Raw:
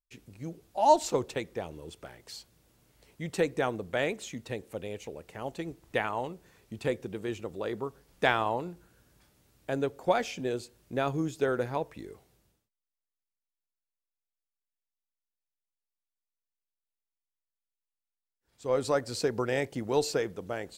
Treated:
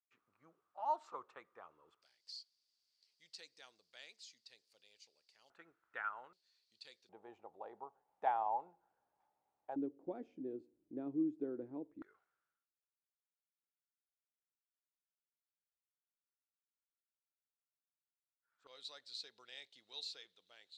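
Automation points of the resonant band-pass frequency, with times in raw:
resonant band-pass, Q 8.1
1,200 Hz
from 0:02.02 4,700 Hz
from 0:05.50 1,400 Hz
from 0:06.33 4,400 Hz
from 0:07.09 820 Hz
from 0:09.76 300 Hz
from 0:12.02 1,400 Hz
from 0:18.67 3,800 Hz

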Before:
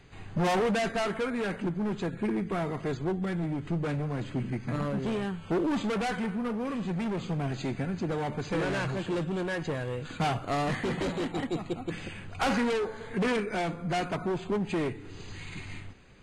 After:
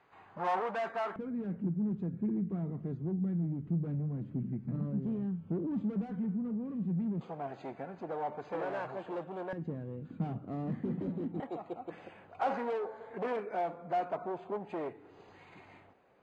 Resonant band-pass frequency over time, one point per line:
resonant band-pass, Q 1.8
960 Hz
from 0:01.16 180 Hz
from 0:07.21 730 Hz
from 0:09.53 210 Hz
from 0:11.40 690 Hz

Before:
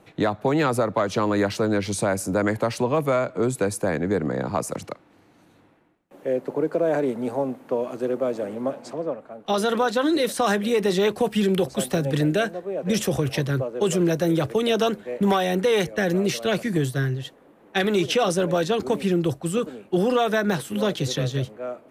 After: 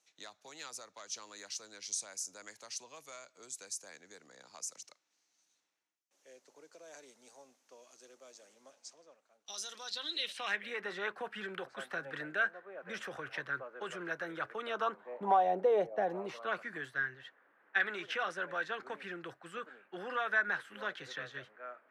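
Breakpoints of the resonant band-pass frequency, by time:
resonant band-pass, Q 3.7
0:09.69 6,100 Hz
0:10.85 1,500 Hz
0:14.51 1,500 Hz
0:15.77 600 Hz
0:16.80 1,600 Hz

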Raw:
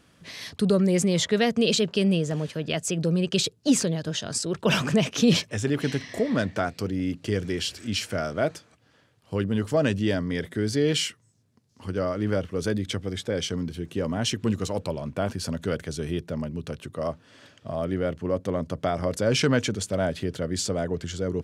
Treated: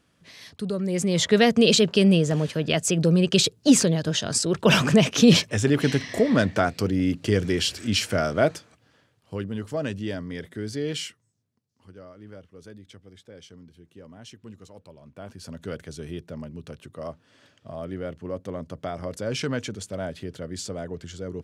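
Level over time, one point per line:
0:00.77 −7 dB
0:01.34 +4.5 dB
0:08.43 +4.5 dB
0:09.54 −6 dB
0:11.07 −6 dB
0:12.02 −18.5 dB
0:14.92 −18.5 dB
0:15.69 −6 dB

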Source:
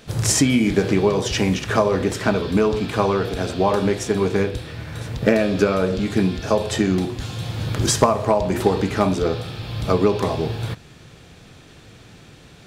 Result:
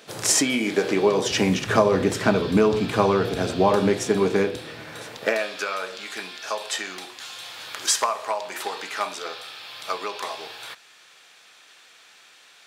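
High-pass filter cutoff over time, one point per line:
0:00.86 370 Hz
0:01.70 110 Hz
0:03.66 110 Hz
0:04.90 300 Hz
0:05.56 1,100 Hz

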